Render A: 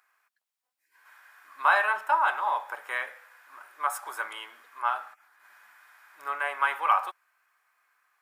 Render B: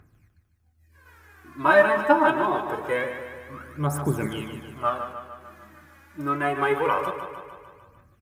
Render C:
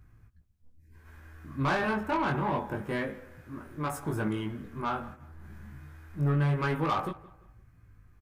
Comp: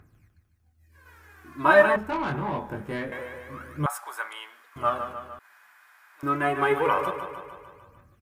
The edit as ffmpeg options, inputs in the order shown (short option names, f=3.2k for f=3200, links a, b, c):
-filter_complex "[0:a]asplit=2[a][b];[1:a]asplit=4[c][d][e][f];[c]atrim=end=1.962[g];[2:a]atrim=start=1.958:end=3.122[h];[d]atrim=start=3.118:end=3.862[i];[a]atrim=start=3.858:end=4.762[j];[e]atrim=start=4.758:end=5.392[k];[b]atrim=start=5.388:end=6.232[l];[f]atrim=start=6.228[m];[g][h]acrossfade=d=0.004:c1=hsin:c2=hsin[n];[n][i]acrossfade=d=0.004:c1=hsin:c2=hsin[o];[o][j]acrossfade=d=0.004:c1=hsin:c2=hsin[p];[p][k]acrossfade=d=0.004:c1=hsin:c2=hsin[q];[q][l]acrossfade=d=0.004:c1=hsin:c2=hsin[r];[r][m]acrossfade=d=0.004:c1=hsin:c2=hsin"